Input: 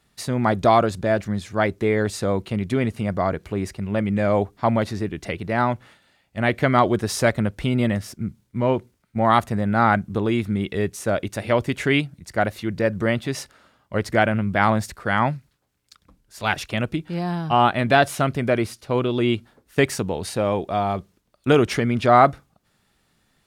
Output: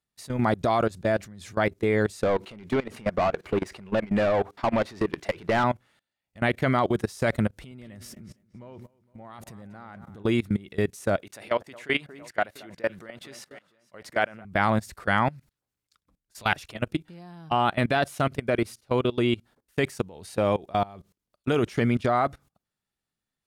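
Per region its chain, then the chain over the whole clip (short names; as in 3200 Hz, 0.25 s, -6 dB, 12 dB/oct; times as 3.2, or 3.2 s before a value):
2.23–5.64 compressor 10:1, threshold -23 dBFS + overdrive pedal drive 24 dB, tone 2000 Hz, clips at -12 dBFS
7.48–10.24 compressor 12:1, threshold -30 dBFS + darkening echo 0.23 s, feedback 56%, low-pass 4300 Hz, level -12.5 dB
11.22–14.45 HPF 580 Hz 6 dB/oct + high shelf 3600 Hz -5 dB + echo with dull and thin repeats by turns 0.231 s, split 1500 Hz, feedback 67%, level -14 dB
whole clip: gate -43 dBFS, range -7 dB; high shelf 5500 Hz +4.5 dB; level quantiser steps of 22 dB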